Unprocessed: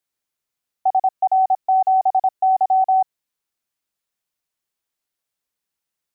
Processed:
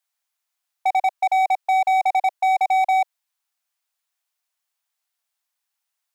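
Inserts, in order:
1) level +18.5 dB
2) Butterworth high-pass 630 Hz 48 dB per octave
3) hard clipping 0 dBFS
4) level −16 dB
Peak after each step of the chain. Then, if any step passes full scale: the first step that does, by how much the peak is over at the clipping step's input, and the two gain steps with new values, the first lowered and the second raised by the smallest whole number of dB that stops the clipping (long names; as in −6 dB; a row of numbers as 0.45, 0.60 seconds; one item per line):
+6.5, +6.5, 0.0, −16.0 dBFS
step 1, 6.5 dB
step 1 +11.5 dB, step 4 −9 dB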